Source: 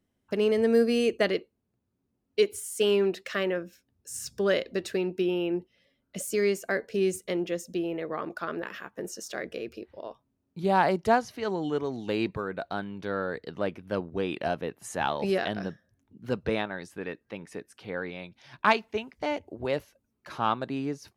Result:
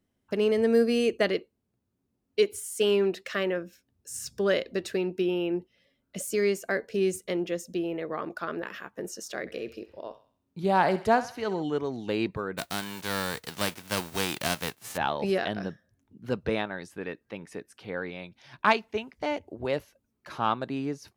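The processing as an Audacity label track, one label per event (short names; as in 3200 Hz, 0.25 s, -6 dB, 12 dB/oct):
9.400000	11.630000	thinning echo 66 ms, feedback 48%, high-pass 590 Hz, level -13 dB
12.570000	14.960000	spectral whitening exponent 0.3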